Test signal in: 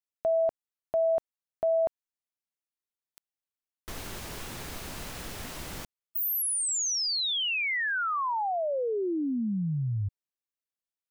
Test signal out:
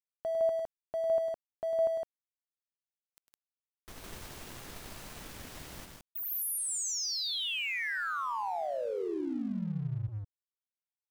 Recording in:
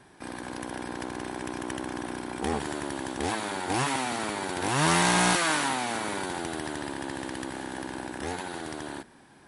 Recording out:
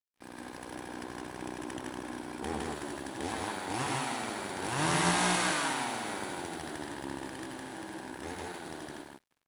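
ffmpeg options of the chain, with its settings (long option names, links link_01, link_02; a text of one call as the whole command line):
ffmpeg -i in.wav -af "aecho=1:1:102|160.3:0.398|0.794,aeval=exprs='sgn(val(0))*max(abs(val(0))-0.00473,0)':channel_layout=same,volume=-7dB" out.wav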